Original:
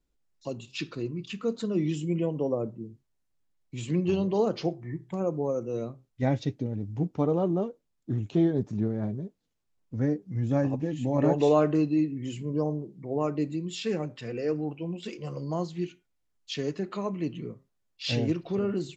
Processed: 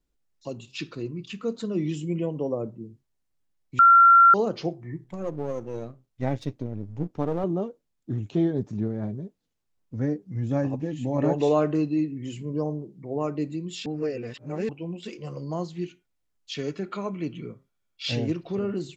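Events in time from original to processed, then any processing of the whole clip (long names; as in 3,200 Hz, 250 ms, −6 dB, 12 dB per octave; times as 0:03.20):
0:03.79–0:04.34: beep over 1,370 Hz −10.5 dBFS
0:05.04–0:07.44: gain on one half-wave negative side −7 dB
0:13.86–0:14.69: reverse
0:16.56–0:18.09: hollow resonant body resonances 1,400/2,300/3,300 Hz, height 11 dB, ringing for 25 ms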